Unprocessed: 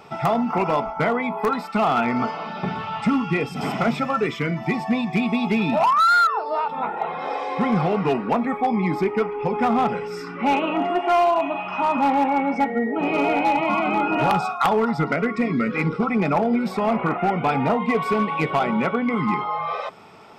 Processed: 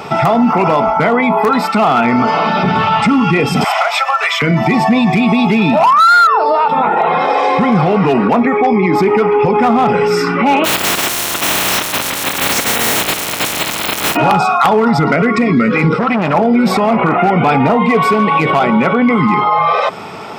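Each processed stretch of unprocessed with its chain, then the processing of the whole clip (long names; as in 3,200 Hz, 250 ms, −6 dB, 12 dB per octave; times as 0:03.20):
0:03.64–0:04.42: Butterworth high-pass 640 Hz 48 dB per octave + downward compressor 5 to 1, threshold −28 dBFS
0:08.42–0:08.95: Chebyshev low-pass with heavy ripple 7,600 Hz, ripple 6 dB + parametric band 390 Hz +9.5 dB 0.62 octaves
0:10.64–0:14.15: compressing power law on the bin magnitudes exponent 0.14 + notch filter 4,800 Hz, Q 15
0:15.94–0:16.34: parametric band 290 Hz −3.5 dB 1.4 octaves + saturating transformer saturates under 770 Hz
whole clip: high-pass filter 64 Hz; boost into a limiter +22 dB; level −3.5 dB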